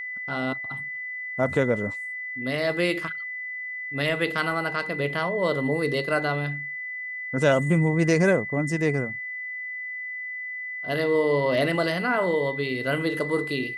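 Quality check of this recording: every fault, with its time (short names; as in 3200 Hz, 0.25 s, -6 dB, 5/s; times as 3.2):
tone 2000 Hz -31 dBFS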